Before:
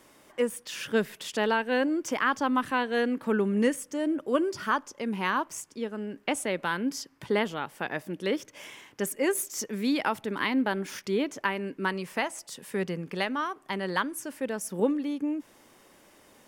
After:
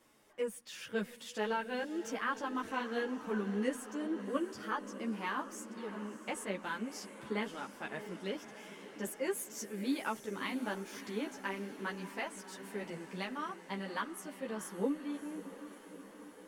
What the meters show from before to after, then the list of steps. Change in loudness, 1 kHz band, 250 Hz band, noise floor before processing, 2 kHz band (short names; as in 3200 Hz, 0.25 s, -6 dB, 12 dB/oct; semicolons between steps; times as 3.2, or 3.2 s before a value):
-9.5 dB, -9.5 dB, -9.5 dB, -59 dBFS, -9.5 dB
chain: diffused feedback echo 0.641 s, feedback 68%, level -12.5 dB; ensemble effect; gain -7 dB